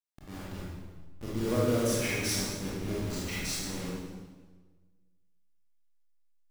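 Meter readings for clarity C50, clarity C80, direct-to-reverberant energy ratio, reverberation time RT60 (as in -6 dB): -3.5 dB, 0.0 dB, -8.0 dB, 1.4 s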